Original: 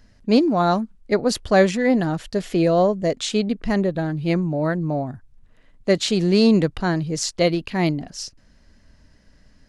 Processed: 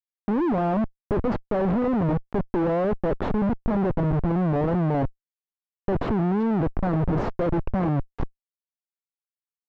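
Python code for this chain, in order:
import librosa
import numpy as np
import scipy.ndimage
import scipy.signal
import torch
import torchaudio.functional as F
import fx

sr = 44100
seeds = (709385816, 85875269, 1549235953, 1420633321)

y = fx.schmitt(x, sr, flips_db=-24.5)
y = scipy.signal.sosfilt(scipy.signal.butter(2, 1000.0, 'lowpass', fs=sr, output='sos'), y)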